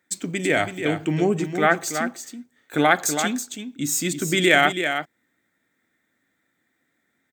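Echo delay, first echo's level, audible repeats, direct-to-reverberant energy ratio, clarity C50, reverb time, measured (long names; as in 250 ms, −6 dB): 327 ms, −8.0 dB, 1, no reverb audible, no reverb audible, no reverb audible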